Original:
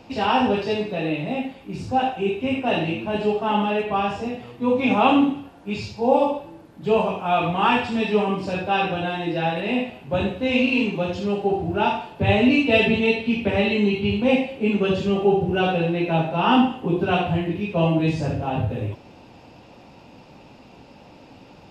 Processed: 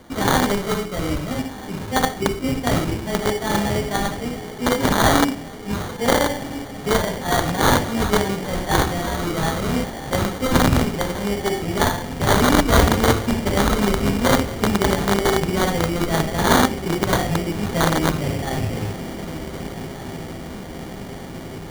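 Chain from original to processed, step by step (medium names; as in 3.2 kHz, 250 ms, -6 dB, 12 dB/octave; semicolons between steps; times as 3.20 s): distance through air 220 m; echo that smears into a reverb 1392 ms, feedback 76%, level -13.5 dB; in parallel at -6 dB: integer overflow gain 13.5 dB; on the sum: resonant high shelf 2.3 kHz +14 dB, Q 1.5; sample-rate reducer 2.6 kHz, jitter 0%; trim -3.5 dB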